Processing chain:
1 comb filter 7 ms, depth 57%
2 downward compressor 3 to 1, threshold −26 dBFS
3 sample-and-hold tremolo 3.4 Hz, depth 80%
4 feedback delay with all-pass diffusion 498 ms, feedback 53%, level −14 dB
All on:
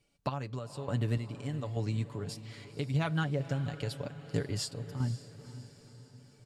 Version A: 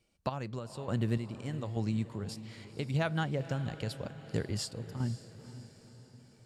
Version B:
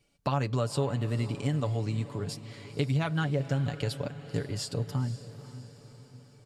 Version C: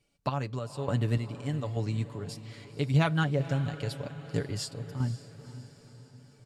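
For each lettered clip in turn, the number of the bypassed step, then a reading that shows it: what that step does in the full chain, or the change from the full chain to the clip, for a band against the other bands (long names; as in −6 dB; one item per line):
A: 1, 125 Hz band −2.0 dB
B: 3, change in momentary loudness spread −3 LU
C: 2, change in integrated loudness +4.0 LU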